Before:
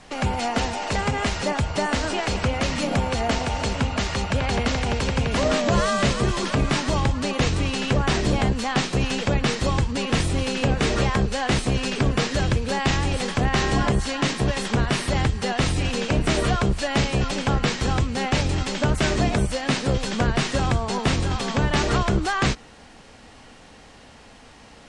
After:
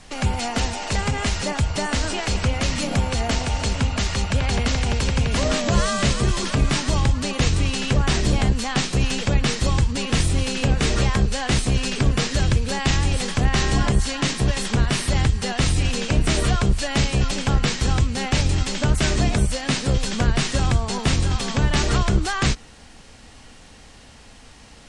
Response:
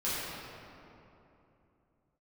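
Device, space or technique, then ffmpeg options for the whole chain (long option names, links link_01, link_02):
smiley-face EQ: -af "lowshelf=frequency=88:gain=7.5,equalizer=frequency=630:width_type=o:width=2.6:gain=-3,highshelf=frequency=5100:gain=7"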